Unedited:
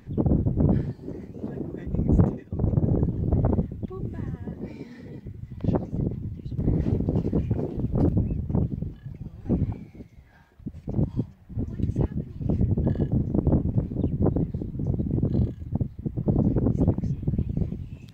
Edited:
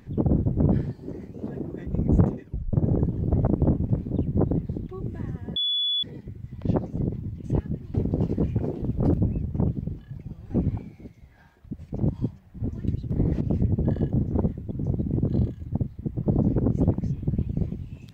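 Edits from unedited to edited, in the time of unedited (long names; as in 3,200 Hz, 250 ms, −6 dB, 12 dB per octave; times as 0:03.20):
0:02.46: tape stop 0.27 s
0:03.47–0:03.85: swap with 0:13.32–0:14.71
0:04.55–0:05.02: beep over 3,420 Hz −22 dBFS
0:06.43–0:06.89: swap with 0:11.90–0:12.40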